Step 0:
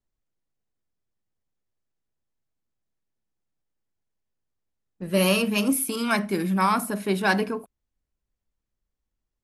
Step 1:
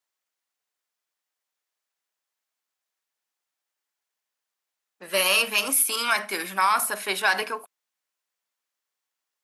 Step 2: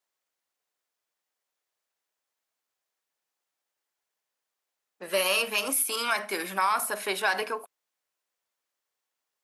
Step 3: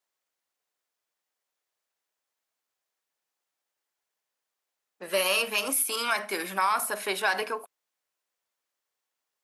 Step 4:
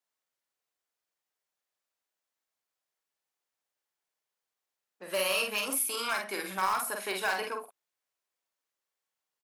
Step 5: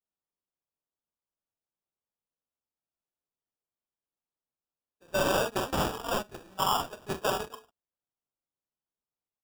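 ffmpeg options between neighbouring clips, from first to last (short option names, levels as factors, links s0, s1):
-af "highpass=930,alimiter=limit=0.112:level=0:latency=1:release=50,volume=2.51"
-filter_complex "[0:a]equalizer=f=490:w=0.78:g=5,asplit=2[s0][s1];[s1]acompressor=threshold=0.0355:ratio=6,volume=1.26[s2];[s0][s2]amix=inputs=2:normalize=0,volume=0.398"
-af anull
-filter_complex "[0:a]asplit=2[s0][s1];[s1]aeval=exprs='(mod(6.31*val(0)+1,2)-1)/6.31':c=same,volume=0.316[s2];[s0][s2]amix=inputs=2:normalize=0,asplit=2[s3][s4];[s4]adelay=48,volume=0.631[s5];[s3][s5]amix=inputs=2:normalize=0,volume=0.422"
-af "acrusher=samples=21:mix=1:aa=0.000001,agate=range=0.158:threshold=0.0251:ratio=16:detection=peak,volume=1.33"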